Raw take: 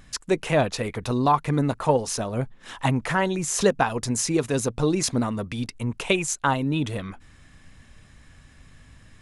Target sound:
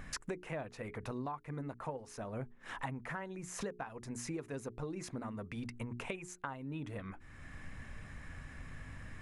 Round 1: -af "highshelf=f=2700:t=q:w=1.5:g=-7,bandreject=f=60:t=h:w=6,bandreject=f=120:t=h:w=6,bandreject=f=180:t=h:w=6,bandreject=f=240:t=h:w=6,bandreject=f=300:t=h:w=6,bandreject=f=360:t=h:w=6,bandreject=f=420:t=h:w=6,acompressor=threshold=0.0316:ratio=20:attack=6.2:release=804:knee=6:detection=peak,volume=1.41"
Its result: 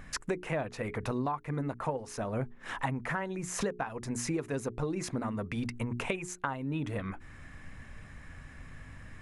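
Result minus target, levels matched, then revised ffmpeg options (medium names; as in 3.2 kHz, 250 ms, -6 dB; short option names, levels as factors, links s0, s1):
compression: peak gain reduction -8 dB
-af "highshelf=f=2700:t=q:w=1.5:g=-7,bandreject=f=60:t=h:w=6,bandreject=f=120:t=h:w=6,bandreject=f=180:t=h:w=6,bandreject=f=240:t=h:w=6,bandreject=f=300:t=h:w=6,bandreject=f=360:t=h:w=6,bandreject=f=420:t=h:w=6,acompressor=threshold=0.0119:ratio=20:attack=6.2:release=804:knee=6:detection=peak,volume=1.41"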